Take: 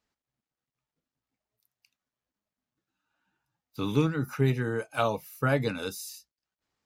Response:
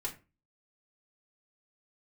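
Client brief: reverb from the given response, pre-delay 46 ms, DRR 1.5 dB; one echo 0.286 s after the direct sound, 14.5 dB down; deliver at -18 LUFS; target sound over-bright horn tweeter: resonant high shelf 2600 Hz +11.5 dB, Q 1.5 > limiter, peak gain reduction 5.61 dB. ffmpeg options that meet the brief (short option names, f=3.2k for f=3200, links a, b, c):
-filter_complex "[0:a]aecho=1:1:286:0.188,asplit=2[a][b];[1:a]atrim=start_sample=2205,adelay=46[c];[b][c]afir=irnorm=-1:irlink=0,volume=-2.5dB[d];[a][d]amix=inputs=2:normalize=0,highshelf=f=2.6k:t=q:w=1.5:g=11.5,volume=8.5dB,alimiter=limit=-6.5dB:level=0:latency=1"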